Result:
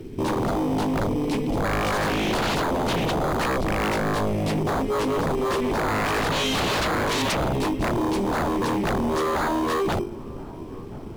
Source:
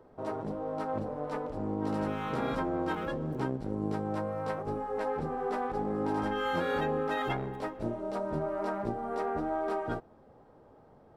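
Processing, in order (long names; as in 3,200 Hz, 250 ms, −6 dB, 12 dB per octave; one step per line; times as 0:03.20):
elliptic band-stop filter 380–2,300 Hz
mains-hum notches 50/100/150/200/250/300/350/400/450/500 Hz
in parallel at −10 dB: decimation without filtering 16×
on the sum: background noise brown −66 dBFS
sine wavefolder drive 19 dB, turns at −20.5 dBFS
delay with a band-pass on its return 1,034 ms, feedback 71%, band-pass 580 Hz, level −20 dB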